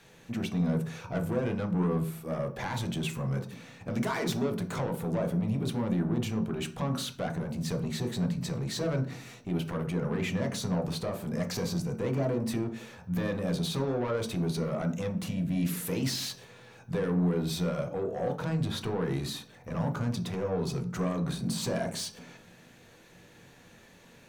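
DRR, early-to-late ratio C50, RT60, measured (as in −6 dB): 3.5 dB, 12.0 dB, 0.45 s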